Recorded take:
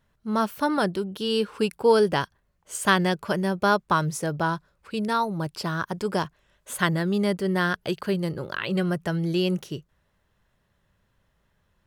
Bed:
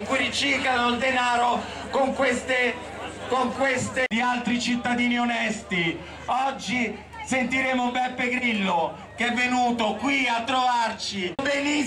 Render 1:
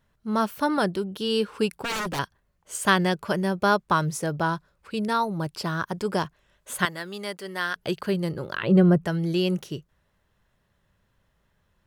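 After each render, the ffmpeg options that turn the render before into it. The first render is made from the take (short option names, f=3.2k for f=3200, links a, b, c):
-filter_complex "[0:a]asettb=1/sr,asplit=3[a][b][c];[a]atrim=end=1.754[d];[b]atrim=start=1.75:end=2.19,asetpts=PTS-STARTPTS,afade=t=in:d=0.004:c=qsin,afade=t=out:st=0.436:d=0.004:c=qsin,aeval=exprs='0.0668*(abs(mod(val(0)/0.0668+3,4)-2)-1)':c=same[e];[c]atrim=start=2.186[f];[d][e]acrossfade=d=0.004:c1=hsin:c2=qsin[g];[g][f]acrossfade=d=0.004:c1=qsin:c2=hsin,asettb=1/sr,asplit=3[h][i][j];[h]atrim=end=6.854[k];[i]atrim=start=6.85:end=7.76,asetpts=PTS-STARTPTS,afade=t=in:d=0.004:c=qsin,afade=t=out:st=0.906:d=0.004:c=qsin,highpass=f=1.2k:p=1[l];[j]atrim=start=7.756[m];[k][l]acrossfade=d=0.004:c1=hsin:c2=qsin[n];[n][m]acrossfade=d=0.004:c1=qsin:c2=hsin,asettb=1/sr,asplit=3[o][p][q];[o]atrim=end=8.634[r];[p]atrim=start=8.63:end=9.05,asetpts=PTS-STARTPTS,afade=t=in:d=0.004:c=qsin,afade=t=out:st=0.416:d=0.004:c=qsin,tiltshelf=f=1.3k:g=9[s];[q]atrim=start=9.046[t];[r][s]acrossfade=d=0.004:c1=hsin:c2=qsin[u];[u][t]acrossfade=d=0.004:c1=qsin:c2=hsin"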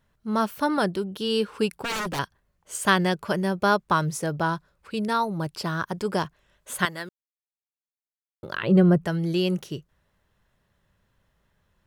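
-filter_complex "[0:a]asplit=3[a][b][c];[a]atrim=end=7.09,asetpts=PTS-STARTPTS,afade=t=out:st=7.086:d=0.004:c=hsin[d];[b]atrim=start=7.09:end=8.43,asetpts=PTS-STARTPTS,volume=0[e];[c]atrim=start=8.43,asetpts=PTS-STARTPTS,afade=t=in:d=0.004:c=hsin[f];[d][e][f]concat=n=3:v=0:a=1"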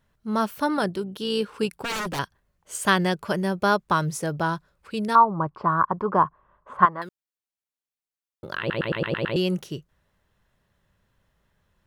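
-filter_complex "[0:a]asettb=1/sr,asplit=3[a][b][c];[a]atrim=end=0.774[d];[b]atrim=start=0.77:end=1.81,asetpts=PTS-STARTPTS,afade=t=in:d=0.004:c=qsin,afade=t=out:st=1.036:d=0.004:c=qsin,tremolo=f=58:d=0.261[e];[c]atrim=start=1.806[f];[d][e]acrossfade=d=0.004:c1=hsin:c2=qsin[g];[g][f]acrossfade=d=0.004:c1=qsin:c2=hsin,asettb=1/sr,asplit=3[h][i][j];[h]atrim=end=5.154[k];[i]atrim=start=5.15:end=7.02,asetpts=PTS-STARTPTS,afade=t=in:d=0.004:c=qsin,afade=t=out:st=1.866:d=0.004:c=qsin,lowpass=f=1.1k:t=q:w=6[l];[j]atrim=start=7.016[m];[k][l]acrossfade=d=0.004:c1=hsin:c2=qsin[n];[n][m]acrossfade=d=0.004:c1=qsin:c2=hsin,asplit=8[o][p][q][r][s][t][u][v];[o]atrim=end=8.702[w];[p]atrim=start=8.588:end=8.702[x];[q]atrim=start=8.588:end=8.702[y];[r]atrim=start=8.588:end=8.702[z];[s]atrim=start=8.588:end=8.702[aa];[t]atrim=start=8.588:end=8.702[ab];[u]atrim=start=8.588:end=8.702[ac];[v]atrim=start=9.358[ad];[w][x]acrossfade=d=0.004:c1=hsin:c2=hsin[ae];[ae][y]acrossfade=d=0.004:c1=hsin:c2=hsin[af];[af][z]acrossfade=d=0.004:c1=hsin:c2=hsin[ag];[ag][aa]acrossfade=d=0.004:c1=hsin:c2=hsin[ah];[ah][ab]acrossfade=d=0.004:c1=hsin:c2=hsin[ai];[ai][ac]acrossfade=d=0.004:c1=hsin:c2=hsin[aj];[aj][ad]acrossfade=d=0.004:c1=hsin:c2=hsin"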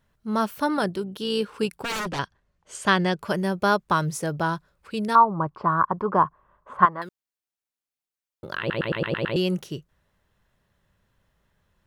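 -filter_complex "[0:a]asettb=1/sr,asplit=3[a][b][c];[a]atrim=end=2.054[d];[b]atrim=start=2.05:end=3.19,asetpts=PTS-STARTPTS,afade=t=in:d=0.004:c=qsin,afade=t=out:st=1.136:d=0.004:c=qsin,lowpass=6.5k[e];[c]atrim=start=3.186[f];[d][e]acrossfade=d=0.004:c1=hsin:c2=qsin[g];[g][f]acrossfade=d=0.004:c1=qsin:c2=hsin"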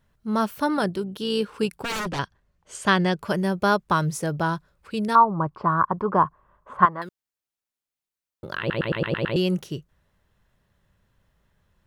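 -af "lowshelf=f=200:g=3.5"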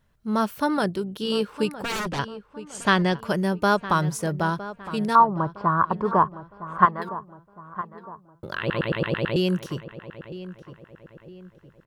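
-filter_complex "[0:a]asplit=2[a][b];[b]adelay=961,lowpass=f=2.2k:p=1,volume=-14dB,asplit=2[c][d];[d]adelay=961,lowpass=f=2.2k:p=1,volume=0.43,asplit=2[e][f];[f]adelay=961,lowpass=f=2.2k:p=1,volume=0.43,asplit=2[g][h];[h]adelay=961,lowpass=f=2.2k:p=1,volume=0.43[i];[a][c][e][g][i]amix=inputs=5:normalize=0"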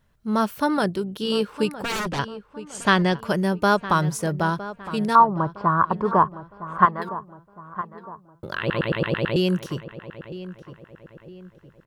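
-af "volume=1.5dB,alimiter=limit=-2dB:level=0:latency=1"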